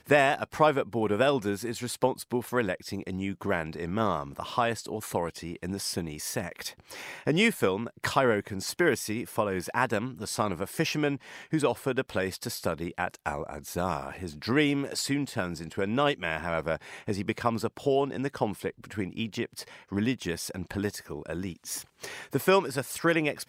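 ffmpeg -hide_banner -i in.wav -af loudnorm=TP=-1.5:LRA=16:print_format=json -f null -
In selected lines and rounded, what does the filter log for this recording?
"input_i" : "-29.7",
"input_tp" : "-8.9",
"input_lra" : "4.6",
"input_thresh" : "-39.8",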